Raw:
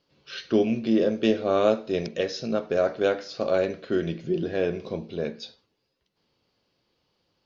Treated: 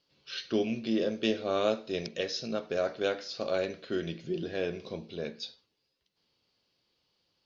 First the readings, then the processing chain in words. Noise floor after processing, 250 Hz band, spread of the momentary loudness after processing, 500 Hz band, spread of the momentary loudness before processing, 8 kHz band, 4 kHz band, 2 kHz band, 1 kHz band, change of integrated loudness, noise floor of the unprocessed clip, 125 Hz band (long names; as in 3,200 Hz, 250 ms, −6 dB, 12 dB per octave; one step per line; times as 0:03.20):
−79 dBFS, −7.5 dB, 11 LU, −7.0 dB, 11 LU, can't be measured, 0.0 dB, −4.0 dB, −6.5 dB, −7.0 dB, −76 dBFS, −7.5 dB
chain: parametric band 4,400 Hz +8 dB 2.1 octaves
level −7.5 dB